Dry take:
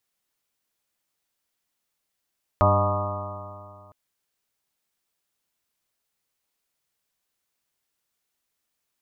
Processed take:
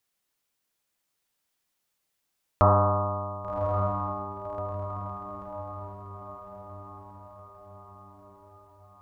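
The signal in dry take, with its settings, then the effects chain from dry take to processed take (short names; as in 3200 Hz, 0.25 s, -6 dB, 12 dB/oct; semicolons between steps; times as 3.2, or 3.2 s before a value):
stretched partials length 1.31 s, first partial 97.4 Hz, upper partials -10/-12/-14/-19/-0.5/-8/-9/-6.5/-6.5/-3 dB, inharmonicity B 0.0026, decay 2.29 s, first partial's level -18.5 dB
diffused feedback echo 1.135 s, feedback 54%, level -5.5 dB; Doppler distortion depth 0.14 ms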